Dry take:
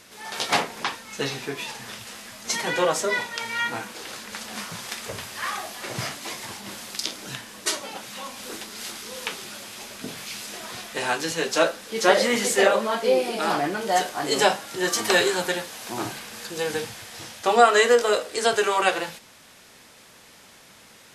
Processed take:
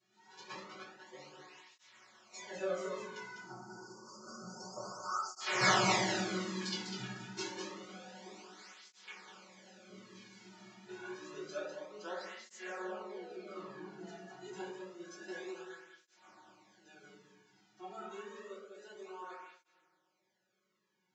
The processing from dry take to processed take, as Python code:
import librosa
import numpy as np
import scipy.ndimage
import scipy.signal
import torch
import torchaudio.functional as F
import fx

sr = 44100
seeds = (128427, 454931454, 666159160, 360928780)

y = fx.doppler_pass(x, sr, speed_mps=22, closest_m=4.1, pass_at_s=5.74)
y = scipy.signal.sosfilt(scipy.signal.butter(2, 100.0, 'highpass', fs=sr, output='sos'), y)
y = fx.spec_erase(y, sr, start_s=3.19, length_s=2.22, low_hz=1500.0, high_hz=4400.0)
y = scipy.signal.sosfilt(scipy.signal.butter(16, 7400.0, 'lowpass', fs=sr, output='sos'), y)
y = y + 0.95 * np.pad(y, (int(5.4 * sr / 1000.0), 0))[:len(y)]
y = y + 10.0 ** (-6.0 / 20.0) * np.pad(y, (int(200 * sr / 1000.0), 0))[:len(y)]
y = fx.rev_fdn(y, sr, rt60_s=1.0, lf_ratio=1.45, hf_ratio=0.45, size_ms=48.0, drr_db=-8.5)
y = fx.flanger_cancel(y, sr, hz=0.28, depth_ms=2.0)
y = F.gain(torch.from_numpy(y), -3.0).numpy()